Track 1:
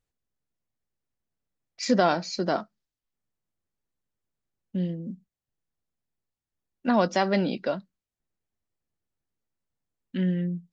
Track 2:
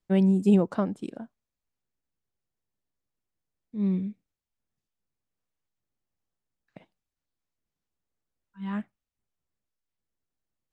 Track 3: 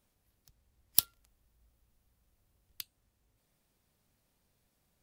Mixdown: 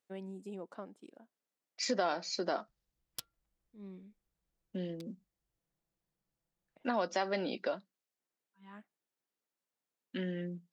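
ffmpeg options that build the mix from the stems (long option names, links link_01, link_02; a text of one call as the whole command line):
ffmpeg -i stem1.wav -i stem2.wav -i stem3.wav -filter_complex "[0:a]volume=-1dB[link_01];[1:a]alimiter=limit=-16dB:level=0:latency=1:release=178,volume=-14.5dB[link_02];[2:a]aecho=1:1:6:0.94,adynamicsmooth=sensitivity=7.5:basefreq=1500,adelay=2200,volume=-14.5dB[link_03];[link_01][link_02]amix=inputs=2:normalize=0,highpass=320,acompressor=threshold=-35dB:ratio=2,volume=0dB[link_04];[link_03][link_04]amix=inputs=2:normalize=0" out.wav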